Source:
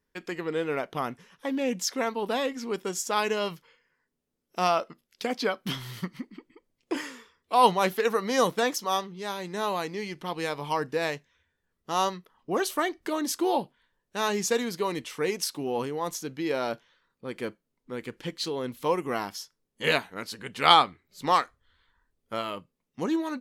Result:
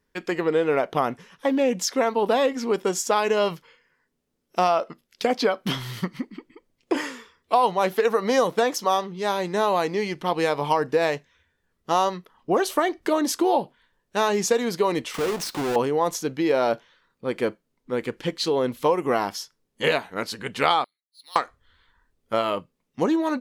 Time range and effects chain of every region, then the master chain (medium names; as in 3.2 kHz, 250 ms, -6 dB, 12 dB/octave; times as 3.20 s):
15.14–15.76 s: square wave that keeps the level + compression 4:1, threshold -37 dBFS + waveshaping leveller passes 1
20.84–21.36 s: expander -58 dBFS + band-pass filter 4.2 kHz, Q 13 + careless resampling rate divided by 3×, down filtered, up hold
whole clip: treble shelf 9.6 kHz -4.5 dB; compression 6:1, threshold -27 dBFS; dynamic bell 620 Hz, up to +6 dB, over -42 dBFS, Q 0.78; trim +6 dB